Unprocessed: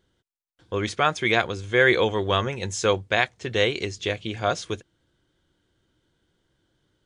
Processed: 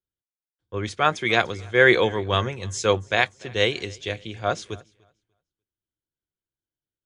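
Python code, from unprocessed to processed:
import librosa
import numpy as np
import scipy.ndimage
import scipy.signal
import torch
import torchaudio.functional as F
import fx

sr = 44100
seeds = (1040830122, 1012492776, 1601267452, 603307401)

p1 = x + fx.echo_feedback(x, sr, ms=295, feedback_pct=46, wet_db=-20.5, dry=0)
y = fx.band_widen(p1, sr, depth_pct=70)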